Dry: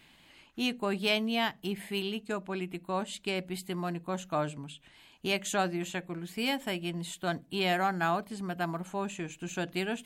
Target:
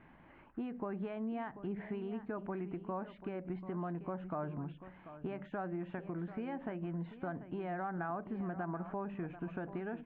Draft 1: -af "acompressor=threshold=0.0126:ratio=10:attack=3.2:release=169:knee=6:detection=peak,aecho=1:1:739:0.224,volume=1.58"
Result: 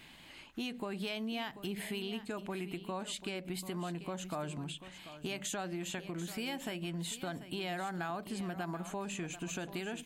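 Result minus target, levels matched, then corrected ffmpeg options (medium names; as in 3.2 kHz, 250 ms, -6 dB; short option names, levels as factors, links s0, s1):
2 kHz band +4.5 dB
-af "acompressor=threshold=0.0126:ratio=10:attack=3.2:release=169:knee=6:detection=peak,lowpass=f=1600:w=0.5412,lowpass=f=1600:w=1.3066,aecho=1:1:739:0.224,volume=1.58"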